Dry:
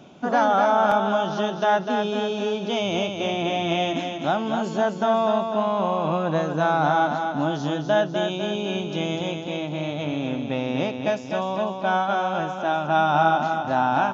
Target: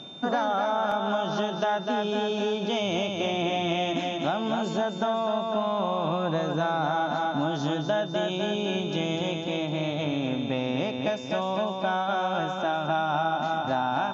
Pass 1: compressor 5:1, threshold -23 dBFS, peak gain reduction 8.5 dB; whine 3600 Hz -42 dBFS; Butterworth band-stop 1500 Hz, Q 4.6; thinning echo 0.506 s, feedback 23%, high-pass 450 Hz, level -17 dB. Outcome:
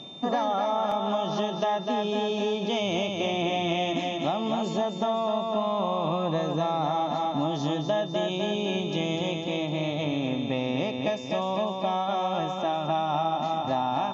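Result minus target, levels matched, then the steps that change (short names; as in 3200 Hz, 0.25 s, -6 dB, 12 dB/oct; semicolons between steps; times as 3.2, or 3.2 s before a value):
2000 Hz band -4.5 dB
remove: Butterworth band-stop 1500 Hz, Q 4.6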